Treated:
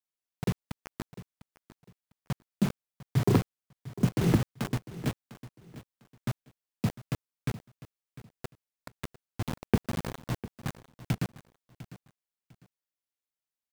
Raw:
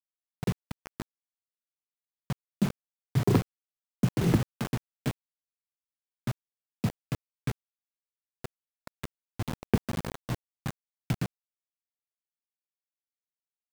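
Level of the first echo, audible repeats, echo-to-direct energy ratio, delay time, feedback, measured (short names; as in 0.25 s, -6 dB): -16.5 dB, 2, -16.0 dB, 0.701 s, 25%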